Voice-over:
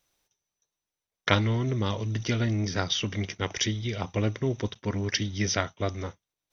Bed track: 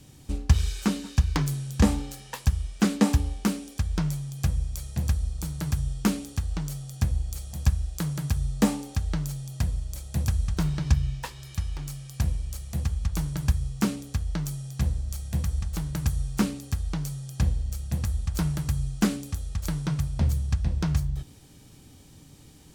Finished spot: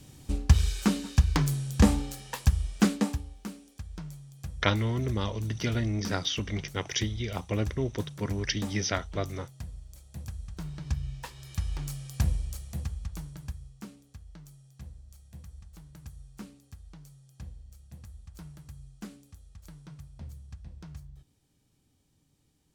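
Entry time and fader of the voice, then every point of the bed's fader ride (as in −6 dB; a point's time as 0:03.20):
3.35 s, −2.5 dB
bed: 0:02.83 0 dB
0:03.26 −14 dB
0:10.50 −14 dB
0:11.73 −0.5 dB
0:12.34 −0.5 dB
0:13.87 −19.5 dB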